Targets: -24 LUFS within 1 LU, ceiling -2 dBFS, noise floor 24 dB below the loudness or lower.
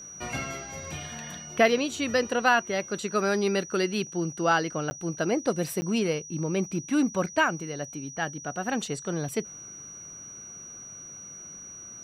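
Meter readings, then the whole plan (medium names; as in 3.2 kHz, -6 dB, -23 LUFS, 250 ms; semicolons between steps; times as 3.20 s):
dropouts 2; longest dropout 10 ms; steady tone 5.8 kHz; tone level -41 dBFS; loudness -28.0 LUFS; peak level -9.0 dBFS; loudness target -24.0 LUFS
-> interpolate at 4.90/5.81 s, 10 ms; band-stop 5.8 kHz, Q 30; trim +4 dB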